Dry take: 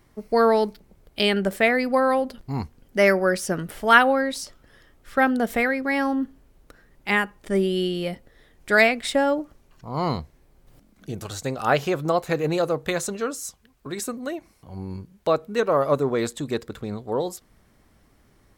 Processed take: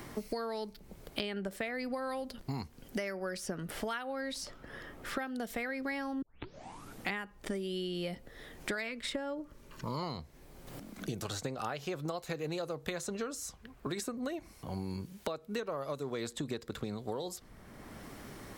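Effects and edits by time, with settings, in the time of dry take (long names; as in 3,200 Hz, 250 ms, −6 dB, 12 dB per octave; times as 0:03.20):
0:06.22: tape start 0.92 s
0:08.75–0:10.03: Butterworth band-reject 740 Hz, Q 4.1
whole clip: downward compressor 12 to 1, threshold −32 dBFS; dynamic equaliser 4,700 Hz, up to +4 dB, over −55 dBFS, Q 0.93; multiband upward and downward compressor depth 70%; level −2 dB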